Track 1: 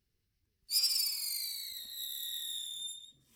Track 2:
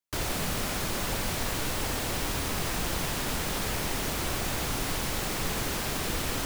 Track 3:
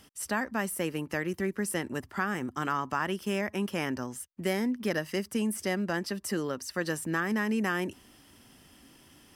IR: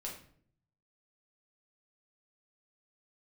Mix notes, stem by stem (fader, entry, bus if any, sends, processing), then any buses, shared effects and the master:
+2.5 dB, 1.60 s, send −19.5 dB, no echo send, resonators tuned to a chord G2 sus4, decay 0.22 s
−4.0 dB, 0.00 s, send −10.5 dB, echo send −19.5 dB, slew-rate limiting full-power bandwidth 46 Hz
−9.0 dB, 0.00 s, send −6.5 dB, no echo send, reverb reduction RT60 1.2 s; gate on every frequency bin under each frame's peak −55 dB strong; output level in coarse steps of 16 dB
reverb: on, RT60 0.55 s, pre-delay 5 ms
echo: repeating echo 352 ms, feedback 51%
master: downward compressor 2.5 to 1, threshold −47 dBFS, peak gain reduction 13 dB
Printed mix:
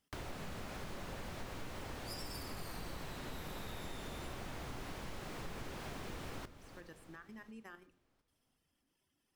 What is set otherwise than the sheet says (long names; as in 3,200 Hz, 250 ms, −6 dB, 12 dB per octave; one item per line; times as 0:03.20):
stem 1: entry 1.60 s → 1.35 s
stem 3 −9.0 dB → −21.0 dB